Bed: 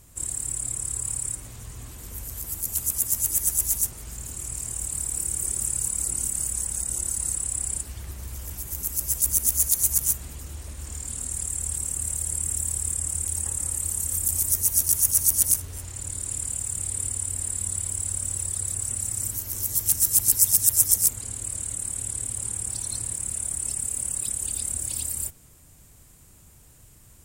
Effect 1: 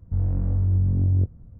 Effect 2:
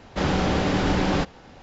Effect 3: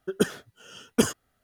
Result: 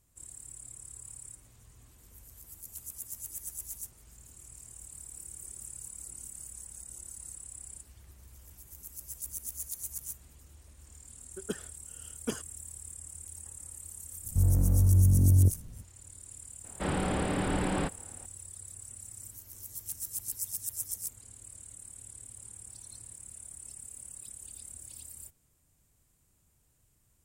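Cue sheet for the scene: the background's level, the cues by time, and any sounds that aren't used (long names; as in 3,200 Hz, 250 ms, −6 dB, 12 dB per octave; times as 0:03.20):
bed −17.5 dB
0:11.29: mix in 3 −13 dB
0:14.24: mix in 1 −1 dB
0:16.64: mix in 2 −8 dB + low-pass filter 3,400 Hz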